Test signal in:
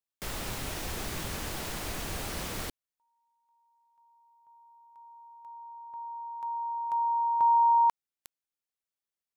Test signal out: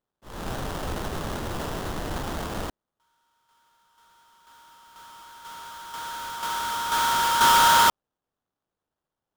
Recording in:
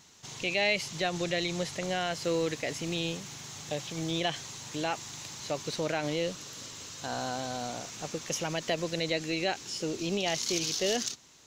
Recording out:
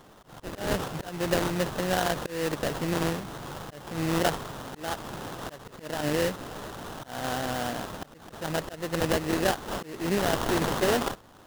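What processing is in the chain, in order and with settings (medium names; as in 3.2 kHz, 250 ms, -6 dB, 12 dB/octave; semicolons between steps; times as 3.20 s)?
slow attack 283 ms; sample-rate reducer 2.3 kHz, jitter 20%; trim +5 dB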